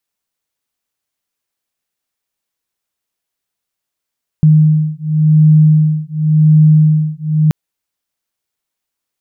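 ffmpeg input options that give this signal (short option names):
-f lavfi -i "aevalsrc='0.335*(sin(2*PI*154*t)+sin(2*PI*154.91*t))':d=3.08:s=44100"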